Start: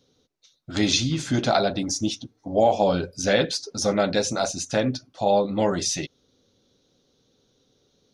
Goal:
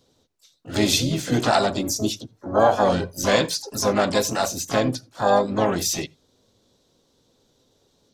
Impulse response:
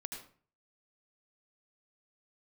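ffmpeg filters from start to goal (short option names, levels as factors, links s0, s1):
-filter_complex "[0:a]asplit=3[s0][s1][s2];[s1]asetrate=55563,aresample=44100,atempo=0.793701,volume=0.447[s3];[s2]asetrate=88200,aresample=44100,atempo=0.5,volume=0.316[s4];[s0][s3][s4]amix=inputs=3:normalize=0,asplit=2[s5][s6];[s6]lowshelf=f=160:t=q:w=1.5:g=13.5[s7];[1:a]atrim=start_sample=2205,afade=t=out:st=0.14:d=0.01,atrim=end_sample=6615[s8];[s7][s8]afir=irnorm=-1:irlink=0,volume=0.119[s9];[s5][s9]amix=inputs=2:normalize=0"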